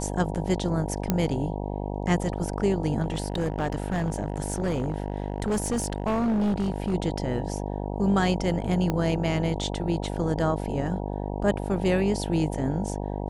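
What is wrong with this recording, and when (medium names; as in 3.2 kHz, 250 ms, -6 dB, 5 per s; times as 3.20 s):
buzz 50 Hz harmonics 19 -31 dBFS
1.10 s: pop -9 dBFS
3.02–6.95 s: clipped -21.5 dBFS
8.90 s: pop -13 dBFS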